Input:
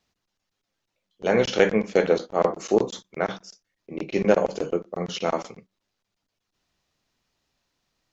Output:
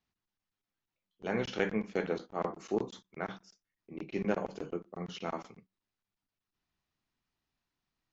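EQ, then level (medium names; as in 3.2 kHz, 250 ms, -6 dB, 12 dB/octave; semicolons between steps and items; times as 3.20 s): peaking EQ 540 Hz -8 dB 0.71 oct; treble shelf 4.3 kHz -11 dB; -8.5 dB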